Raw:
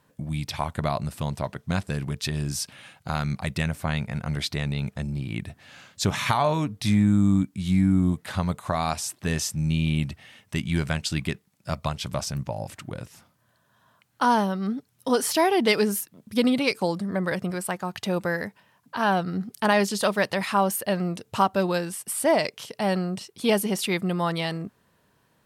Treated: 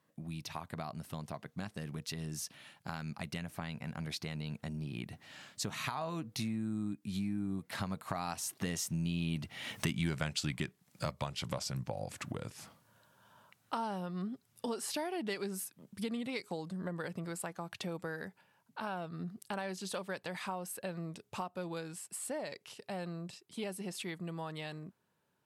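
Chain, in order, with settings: Doppler pass-by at 10.01, 23 m/s, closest 8.8 m; HPF 110 Hz; compressor 4:1, threshold -55 dBFS, peak gain reduction 27.5 dB; gain +18 dB

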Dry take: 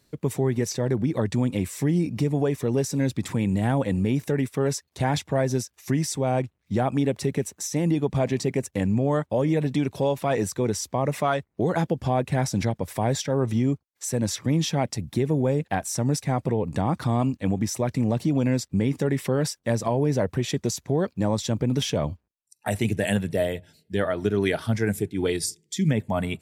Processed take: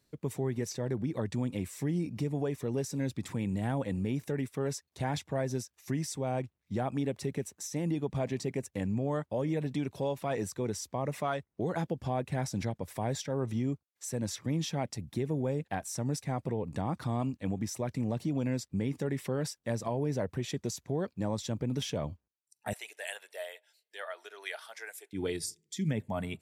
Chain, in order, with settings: 22.73–25.13 Bessel high-pass 910 Hz, order 6; gain -9 dB

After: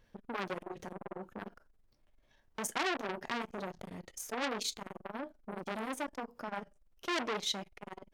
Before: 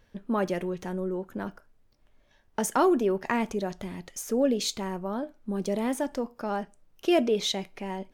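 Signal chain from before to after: flange 0.35 Hz, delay 5.5 ms, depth 5.6 ms, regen -71%; core saturation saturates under 3200 Hz

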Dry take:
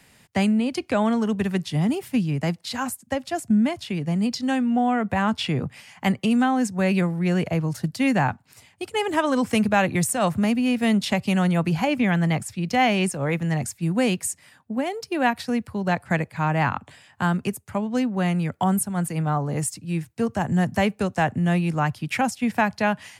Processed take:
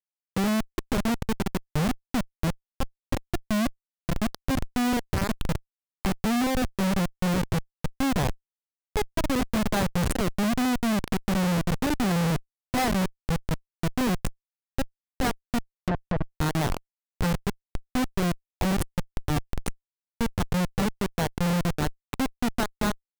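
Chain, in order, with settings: Schmitt trigger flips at -18 dBFS; 15.72–16.34 treble ducked by the level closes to 1600 Hz, closed at -23.5 dBFS

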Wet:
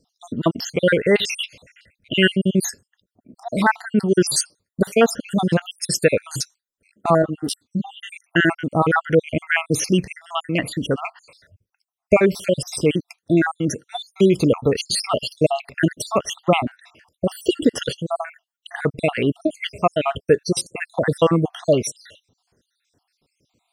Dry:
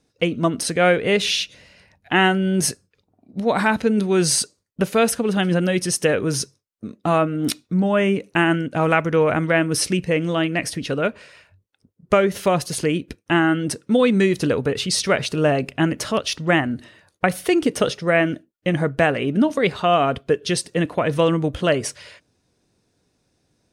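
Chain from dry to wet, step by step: random spectral dropouts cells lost 66%; 7.22–8.1 ensemble effect; gain +4 dB

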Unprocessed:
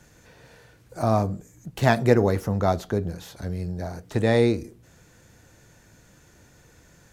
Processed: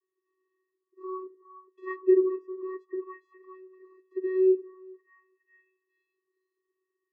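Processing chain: bell 1300 Hz +9 dB 1.2 oct; vocoder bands 16, square 374 Hz; on a send: delay with a stepping band-pass 0.413 s, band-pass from 790 Hz, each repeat 0.7 oct, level -3 dB; on the sum: spectral expander 1.5:1; gain -5.5 dB

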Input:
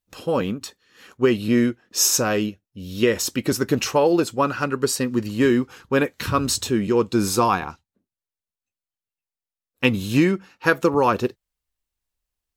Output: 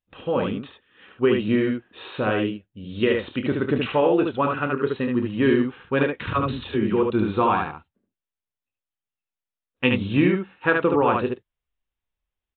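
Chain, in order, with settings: 6.33–7.03 dispersion lows, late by 51 ms, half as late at 500 Hz; on a send: early reflections 28 ms -10.5 dB, 73 ms -4 dB; on the sum: downsampling 8000 Hz; gain -2.5 dB

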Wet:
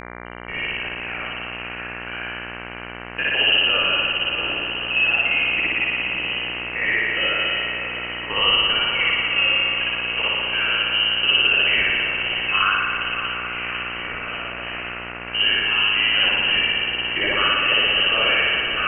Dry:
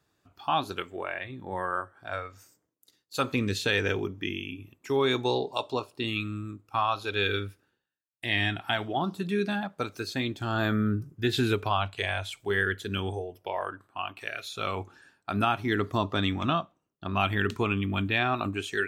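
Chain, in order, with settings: bin magnitudes rounded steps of 15 dB; low shelf 60 Hz +9.5 dB; level quantiser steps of 14 dB; rotary speaker horn 0.85 Hz; on a send: diffused feedback echo 0.63 s, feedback 68%, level -9.5 dB; on the sum: spring tank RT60 2.1 s, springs 58 ms, chirp 25 ms, DRR -7 dB; inverted band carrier 3000 Hz; buzz 60 Hz, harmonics 39, -41 dBFS -1 dB/oct; gain +5 dB

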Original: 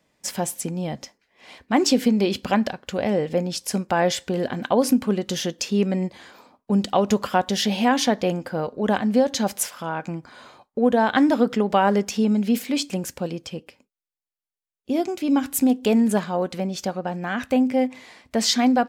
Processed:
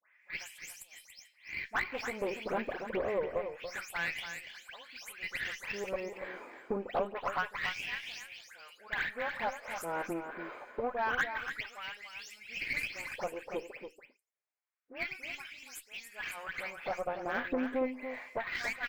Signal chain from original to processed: spectral delay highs late, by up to 0.222 s; LFO high-pass sine 0.27 Hz 350–4300 Hz; compressor 3:1, threshold -34 dBFS, peak gain reduction 18 dB; resonant high shelf 2900 Hz -9 dB, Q 3; added harmonics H 6 -21 dB, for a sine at -17 dBFS; on a send: echo 0.285 s -8.5 dB; on the sum: decimation joined by straight lines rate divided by 2×; gain -2 dB

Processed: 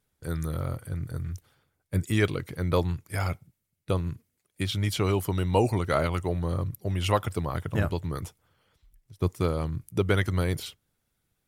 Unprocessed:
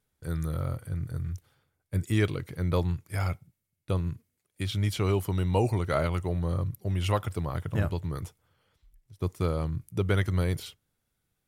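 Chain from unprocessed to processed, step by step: harmonic-percussive split harmonic -5 dB; gain +4.5 dB

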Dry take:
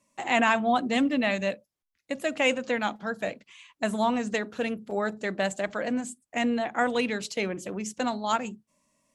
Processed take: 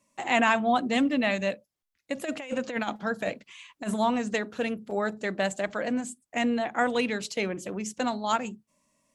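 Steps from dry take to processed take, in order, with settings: 2.16–3.94 negative-ratio compressor -29 dBFS, ratio -0.5

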